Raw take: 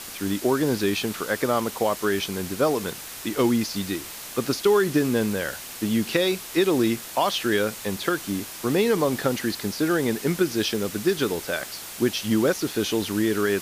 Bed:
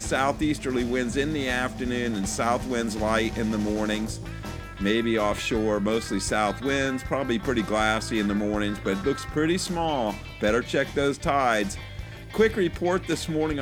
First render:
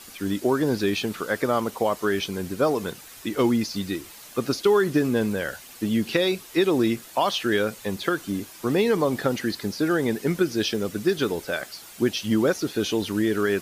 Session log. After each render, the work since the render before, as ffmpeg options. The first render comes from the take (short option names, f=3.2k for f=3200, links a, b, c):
-af "afftdn=nr=9:nf=-38"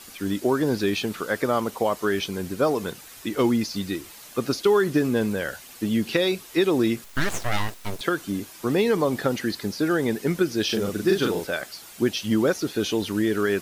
-filter_complex "[0:a]asettb=1/sr,asplit=3[a][b][c];[a]atrim=end=7.044[d];[b]atrim=start=7.04:end=8.01,asetpts=PTS-STARTPTS,afade=t=in:d=0.004:c=qsin,afade=t=out:st=0.966:d=0.004:c=qsin,aeval=exprs='abs(val(0))':c=same[e];[c]atrim=start=8.006[f];[d][e]acrossfade=d=0.004:c1=hsin:c2=qsin[g];[g][f]acrossfade=d=0.004:c1=qsin:c2=hsin,asettb=1/sr,asplit=3[h][i][j];[h]atrim=end=10.654[k];[i]atrim=start=10.65:end=11.47,asetpts=PTS-STARTPTS,afade=t=in:d=0.004:c=qsin,afade=t=out:st=0.816:d=0.004:c=qsin,asplit=2[l][m];[m]adelay=41,volume=-2.5dB[n];[l][n]amix=inputs=2:normalize=0,atrim=end_sample=36162[o];[j]atrim=start=11.466[p];[k][o]acrossfade=d=0.004:c1=hsin:c2=qsin[q];[q][p]acrossfade=d=0.004:c1=qsin:c2=hsin"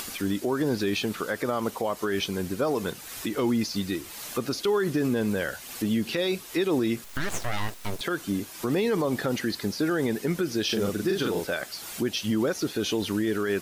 -af "alimiter=limit=-17dB:level=0:latency=1:release=75,acompressor=mode=upward:threshold=-29dB:ratio=2.5"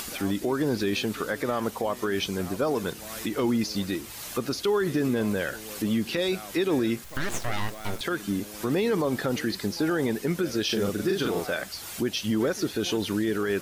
-filter_complex "[1:a]volume=-19dB[a];[0:a][a]amix=inputs=2:normalize=0"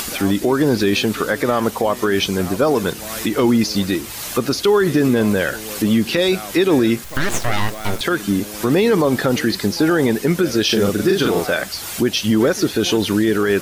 -af "volume=10dB"